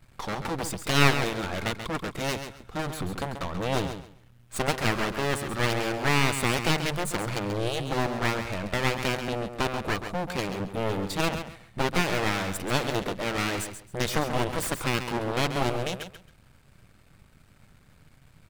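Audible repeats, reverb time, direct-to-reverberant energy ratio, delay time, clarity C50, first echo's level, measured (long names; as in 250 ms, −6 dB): 2, no reverb audible, no reverb audible, 135 ms, no reverb audible, −9.0 dB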